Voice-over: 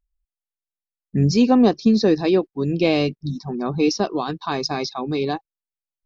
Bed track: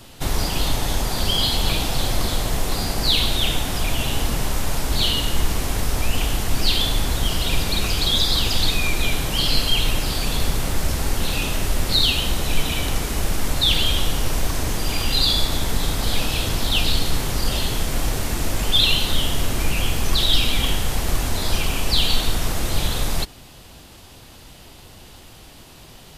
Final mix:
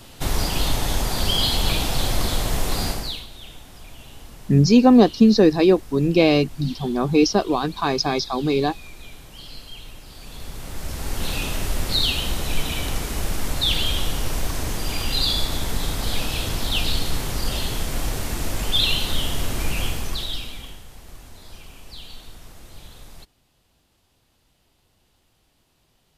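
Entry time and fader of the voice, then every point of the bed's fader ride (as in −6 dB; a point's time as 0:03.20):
3.35 s, +2.5 dB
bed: 0:02.89 −0.5 dB
0:03.27 −20 dB
0:10.05 −20 dB
0:11.27 −3 dB
0:19.85 −3 dB
0:20.86 −21 dB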